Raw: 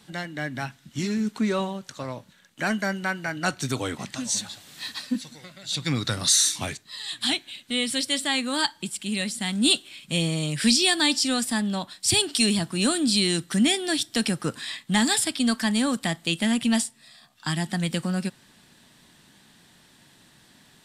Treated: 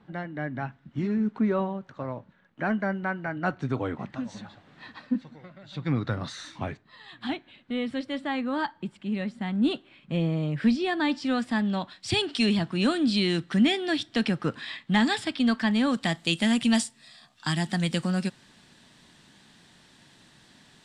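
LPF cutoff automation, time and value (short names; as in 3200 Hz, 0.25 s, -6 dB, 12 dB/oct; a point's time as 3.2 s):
10.88 s 1400 Hz
11.74 s 3000 Hz
15.79 s 3000 Hz
16.19 s 7500 Hz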